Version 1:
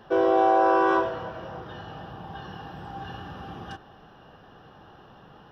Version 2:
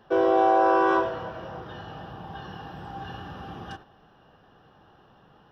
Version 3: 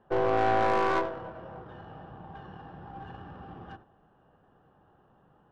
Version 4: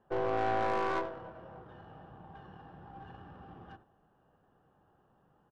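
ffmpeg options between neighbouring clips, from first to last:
-af "agate=range=-6dB:threshold=-45dB:ratio=16:detection=peak"
-af "bandreject=f=110.3:t=h:w=4,bandreject=f=220.6:t=h:w=4,bandreject=f=330.9:t=h:w=4,bandreject=f=441.2:t=h:w=4,aeval=exprs='(tanh(7.94*val(0)+0.8)-tanh(0.8))/7.94':c=same,adynamicsmooth=sensitivity=3.5:basefreq=1.8k"
-af "aresample=32000,aresample=44100,volume=-6dB"

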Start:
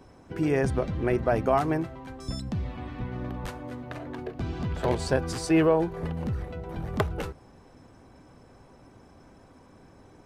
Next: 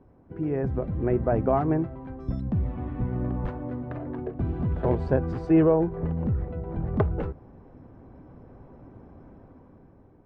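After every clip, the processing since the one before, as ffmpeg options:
-af "lowpass=1.9k,tiltshelf=f=790:g=5.5,dynaudnorm=f=380:g=5:m=9dB,volume=-7.5dB"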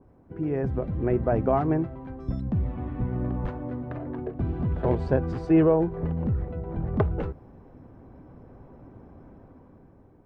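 -af "adynamicequalizer=threshold=0.00708:dfrequency=2500:dqfactor=0.7:tfrequency=2500:tqfactor=0.7:attack=5:release=100:ratio=0.375:range=2:mode=boostabove:tftype=highshelf"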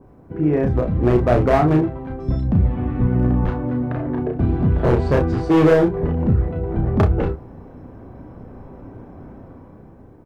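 -filter_complex "[0:a]volume=19.5dB,asoftclip=hard,volume=-19.5dB,asplit=2[a][b];[b]aecho=0:1:33|61:0.668|0.168[c];[a][c]amix=inputs=2:normalize=0,volume=8dB"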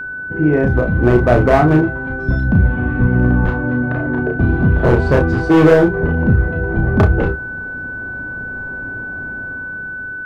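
-af "aeval=exprs='val(0)+0.0398*sin(2*PI*1500*n/s)':c=same,volume=4dB"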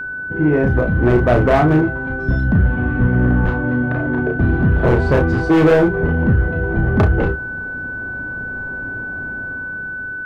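-af "asoftclip=type=tanh:threshold=-5.5dB"

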